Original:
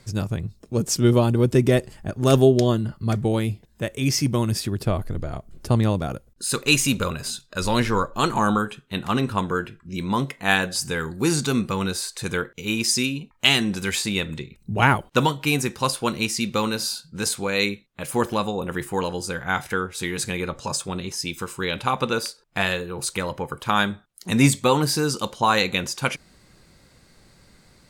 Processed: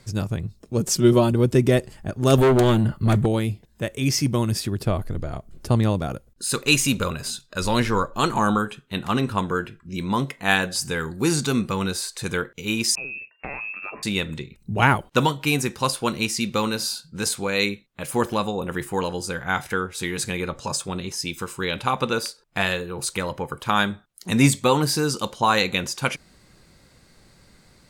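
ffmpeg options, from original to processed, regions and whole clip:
ffmpeg -i in.wav -filter_complex "[0:a]asettb=1/sr,asplit=3[link_01][link_02][link_03];[link_01]atrim=end=0.874[link_04];[link_02]atrim=start=0.87:end=1.33,asetpts=PTS-STARTPTS,afade=type=in:duration=0.004:curve=qsin,afade=type=out:start_time=0.456:duration=0.004:curve=qsin,aecho=1:1:5.4:0.58,atrim=end_sample=20286,acompressor=mode=upward:threshold=-25dB:ratio=2.5:attack=3.2:release=140:knee=2.83:detection=peak[link_05];[link_03]atrim=start=1.326[link_06];[link_04][link_05]acrossfade=duration=0.004:curve1=hsin:curve2=qsin[link_07];[link_07][link_06]acrossfade=duration=0.004:curve1=qsin:curve2=hsin,asettb=1/sr,asplit=3[link_08][link_09][link_10];[link_08]atrim=end=2.384[link_11];[link_09]atrim=start=2.38:end=3.26,asetpts=PTS-STARTPTS,afade=type=in:duration=0.004:curve=qsin,afade=type=out:start_time=0.876:duration=0.004:curve=qsin,asoftclip=type=hard:threshold=-20dB,equalizer=frequency=5300:width=3.2:gain=-11,acontrast=64[link_12];[link_10]atrim=start=3.256[link_13];[link_11][link_12]acrossfade=duration=0.004:curve1=hsin:curve2=qsin[link_14];[link_14][link_13]acrossfade=duration=0.004:curve1=qsin:curve2=hsin,asettb=1/sr,asplit=3[link_15][link_16][link_17];[link_15]atrim=end=12.954[link_18];[link_16]atrim=start=12.95:end=14.03,asetpts=PTS-STARTPTS,afade=type=in:duration=0.004:curve=qsin,afade=type=out:start_time=1.076:duration=0.004:curve=qsin,lowpass=frequency=2400:width_type=q:width=0.5098,lowpass=frequency=2400:width_type=q:width=0.6013,lowpass=frequency=2400:width_type=q:width=0.9,lowpass=frequency=2400:width_type=q:width=2.563,afreqshift=-2800,acompressor=threshold=-33dB:ratio=2.5:attack=3.2:release=140:knee=1:detection=peak[link_19];[link_17]atrim=start=14.026[link_20];[link_18][link_19]acrossfade=duration=0.004:curve1=hsin:curve2=qsin[link_21];[link_21][link_20]acrossfade=duration=0.004:curve1=qsin:curve2=hsin" out.wav

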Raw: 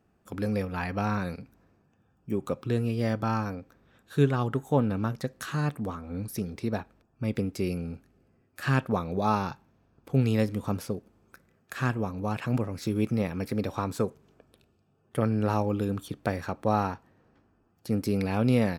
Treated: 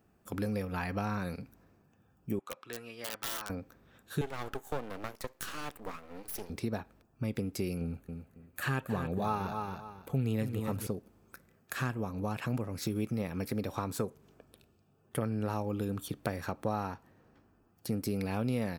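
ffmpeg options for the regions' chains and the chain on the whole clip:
ffmpeg -i in.wav -filter_complex "[0:a]asettb=1/sr,asplit=3[link_01][link_02][link_03];[link_01]atrim=end=2.394[link_04];[link_02]atrim=start=2.39:end=3.5,asetpts=PTS-STARTPTS,afade=type=in:duration=0.004:curve=qsin,afade=type=out:start_time=1.106:duration=0.004:curve=qsin,highpass=1200,aemphasis=mode=reproduction:type=riaa,aeval=exprs='(mod(35.5*val(0)+1,2)-1)/35.5':channel_layout=same[link_05];[link_03]atrim=start=3.496[link_06];[link_04][link_05]acrossfade=duration=0.004:curve1=hsin:curve2=qsin[link_07];[link_07][link_06]acrossfade=duration=0.004:curve1=qsin:curve2=hsin,asettb=1/sr,asplit=3[link_08][link_09][link_10];[link_08]atrim=end=4.214[link_11];[link_09]atrim=start=4.21:end=6.5,asetpts=PTS-STARTPTS,afade=type=in:duration=0.004:curve=qsin,afade=type=out:start_time=2.286:duration=0.004:curve=qsin,highpass=frequency=340:width=0.5412,highpass=frequency=340:width=1.3066,aeval=exprs='max(val(0),0)':channel_layout=same[link_12];[link_10]atrim=start=6.496[link_13];[link_11][link_12]acrossfade=duration=0.004:curve1=hsin:curve2=qsin[link_14];[link_14][link_13]acrossfade=duration=0.004:curve1=qsin:curve2=hsin,asettb=1/sr,asplit=3[link_15][link_16][link_17];[link_15]atrim=end=7.814[link_18];[link_16]atrim=start=7.81:end=10.87,asetpts=PTS-STARTPTS,afade=type=in:duration=0.004:curve=qsin,afade=type=out:start_time=3.056:duration=0.004:curve=qsin,equalizer=frequency=5200:width_type=o:width=0.39:gain=-9,aphaser=in_gain=1:out_gain=1:delay=2.5:decay=0.34:speed=1.6:type=sinusoidal,aecho=1:1:274|548|822:0.335|0.0737|0.0162,atrim=end_sample=134946[link_19];[link_17]atrim=start=10.866[link_20];[link_18][link_19]acrossfade=duration=0.004:curve1=hsin:curve2=qsin[link_21];[link_21][link_20]acrossfade=duration=0.004:curve1=qsin:curve2=hsin,highshelf=frequency=11000:gain=11,acompressor=threshold=-32dB:ratio=2.5" out.wav

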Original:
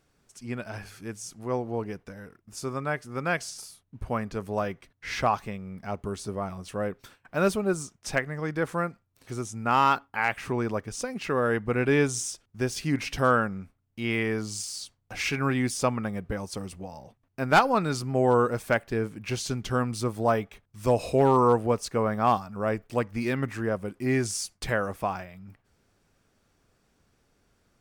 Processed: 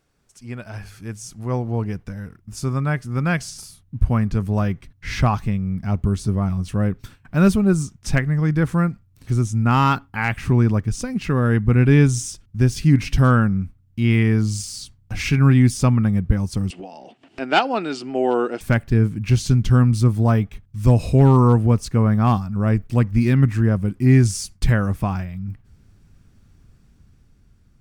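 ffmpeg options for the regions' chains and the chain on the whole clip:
ffmpeg -i in.wav -filter_complex "[0:a]asettb=1/sr,asplit=3[link_01][link_02][link_03];[link_01]atrim=end=16.704[link_04];[link_02]atrim=start=16.7:end=18.61,asetpts=PTS-STARTPTS,afade=type=in:duration=0.004:curve=qsin,afade=type=out:start_time=1.906:duration=0.004:curve=qsin,highpass=frequency=310:width=0.5412,highpass=frequency=310:width=1.3066,equalizer=frequency=350:width_type=q:width=4:gain=4,equalizer=frequency=710:width_type=q:width=4:gain=7,equalizer=frequency=1100:width_type=q:width=4:gain=-6,equalizer=frequency=2900:width_type=q:width=4:gain=10,equalizer=frequency=6200:width_type=q:width=4:gain=-6,lowpass=frequency=7200:width=0.5412,lowpass=frequency=7200:width=1.3066,acompressor=mode=upward:threshold=-32dB:ratio=2.5:attack=3.2:release=140:knee=2.83:detection=peak[link_05];[link_03]atrim=start=18.606[link_06];[link_04][link_05]acrossfade=duration=0.004:curve1=hsin:curve2=qsin[link_07];[link_07][link_06]acrossfade=duration=0.004:curve1=qsin:curve2=hsin,asubboost=boost=7.5:cutoff=190,dynaudnorm=framelen=200:gausssize=11:maxgain=4.5dB" out.wav

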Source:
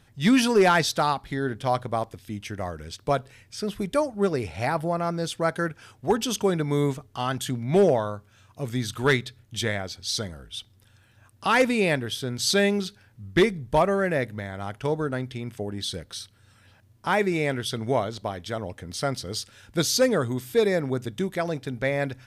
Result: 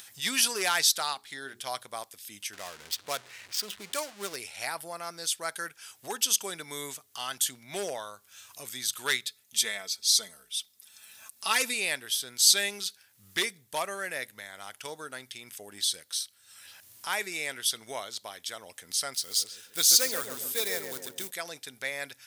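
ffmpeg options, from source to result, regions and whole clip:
ffmpeg -i in.wav -filter_complex "[0:a]asettb=1/sr,asplit=3[link_01][link_02][link_03];[link_01]atrim=end=0.994[link_04];[link_02]atrim=start=0.99:end=1.61,asetpts=PTS-STARTPTS,afade=type=in:duration=0.004:curve=qsin,afade=type=out:start_time=0.616:duration=0.004:curve=qsin,equalizer=frequency=12000:width=3.4:gain=-12,bandreject=frequency=60:width_type=h:width=6,bandreject=frequency=120:width_type=h:width=6,bandreject=frequency=180:width_type=h:width=6,bandreject=frequency=240:width_type=h:width=6,bandreject=frequency=300:width_type=h:width=6,bandreject=frequency=360:width_type=h:width=6,bandreject=frequency=420:width_type=h:width=6[link_05];[link_03]atrim=start=1.606[link_06];[link_04][link_05]acrossfade=duration=0.004:curve1=hsin:curve2=qsin[link_07];[link_07][link_06]acrossfade=duration=0.004:curve1=qsin:curve2=hsin,asettb=1/sr,asplit=3[link_08][link_09][link_10];[link_08]atrim=end=2.534[link_11];[link_09]atrim=start=2.53:end=4.36,asetpts=PTS-STARTPTS,afade=type=in:duration=0.004:curve=qsin,afade=type=out:start_time=1.826:duration=0.004:curve=qsin,aeval=exprs='val(0)+0.5*0.0188*sgn(val(0))':channel_layout=same,highshelf=frequency=4300:gain=4,adynamicsmooth=sensitivity=7.5:basefreq=820[link_12];[link_10]atrim=start=4.356[link_13];[link_11][link_12]acrossfade=duration=0.004:curve1=hsin:curve2=qsin[link_14];[link_14][link_13]acrossfade=duration=0.004:curve1=qsin:curve2=hsin,asettb=1/sr,asplit=3[link_15][link_16][link_17];[link_15]atrim=end=9.264[link_18];[link_16]atrim=start=9.26:end=11.74,asetpts=PTS-STARTPTS,afade=type=in:duration=0.004:curve=qsin,afade=type=out:start_time=2.476:duration=0.004:curve=qsin,equalizer=frequency=1600:width=4.5:gain=-4.5,bandreject=frequency=3000:width=15,aecho=1:1:4.6:0.63,atrim=end_sample=109368[link_19];[link_17]atrim=start=11.736[link_20];[link_18][link_19]acrossfade=duration=0.004:curve1=hsin:curve2=qsin[link_21];[link_21][link_20]acrossfade=duration=0.004:curve1=qsin:curve2=hsin,asettb=1/sr,asplit=3[link_22][link_23][link_24];[link_22]atrim=end=19.144[link_25];[link_23]atrim=start=19.14:end=21.31,asetpts=PTS-STARTPTS,afade=type=in:duration=0.004:curve=qsin,afade=type=out:start_time=2.166:duration=0.004:curve=qsin,acrusher=bits=5:mode=log:mix=0:aa=0.000001,asplit=2[link_26][link_27];[link_27]adelay=137,lowpass=frequency=1100:poles=1,volume=-4dB,asplit=2[link_28][link_29];[link_29]adelay=137,lowpass=frequency=1100:poles=1,volume=0.51,asplit=2[link_30][link_31];[link_31]adelay=137,lowpass=frequency=1100:poles=1,volume=0.51,asplit=2[link_32][link_33];[link_33]adelay=137,lowpass=frequency=1100:poles=1,volume=0.51,asplit=2[link_34][link_35];[link_35]adelay=137,lowpass=frequency=1100:poles=1,volume=0.51,asplit=2[link_36][link_37];[link_37]adelay=137,lowpass=frequency=1100:poles=1,volume=0.51,asplit=2[link_38][link_39];[link_39]adelay=137,lowpass=frequency=1100:poles=1,volume=0.51[link_40];[link_26][link_28][link_30][link_32][link_34][link_36][link_38][link_40]amix=inputs=8:normalize=0,atrim=end_sample=95697[link_41];[link_24]atrim=start=21.306[link_42];[link_25][link_41]acrossfade=duration=0.004:curve1=hsin:curve2=qsin[link_43];[link_43][link_42]acrossfade=duration=0.004:curve1=qsin:curve2=hsin,aderivative,acompressor=mode=upward:threshold=-46dB:ratio=2.5,volume=7.5dB" out.wav

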